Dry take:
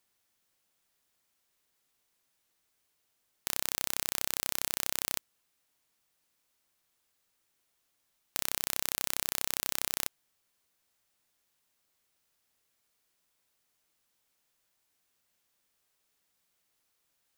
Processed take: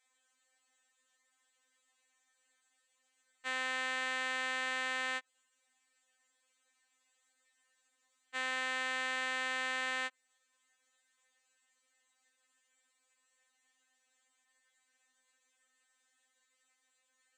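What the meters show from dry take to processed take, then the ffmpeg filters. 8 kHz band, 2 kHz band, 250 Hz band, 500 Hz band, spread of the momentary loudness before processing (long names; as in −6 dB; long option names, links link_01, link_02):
−14.5 dB, +8.5 dB, −1.0 dB, +2.0 dB, 4 LU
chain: -filter_complex "[0:a]acrossover=split=3500[link_01][link_02];[link_02]acompressor=threshold=-45dB:ratio=4:attack=1:release=60[link_03];[link_01][link_03]amix=inputs=2:normalize=0,highpass=340,equalizer=frequency=340:width_type=q:width=4:gain=-6,equalizer=frequency=1800:width_type=q:width=4:gain=9,equalizer=frequency=5200:width_type=q:width=4:gain=-9,equalizer=frequency=7700:width_type=q:width=4:gain=9,lowpass=frequency=7800:width=0.5412,lowpass=frequency=7800:width=1.3066,afftfilt=real='re*3.46*eq(mod(b,12),0)':imag='im*3.46*eq(mod(b,12),0)':win_size=2048:overlap=0.75,volume=4.5dB"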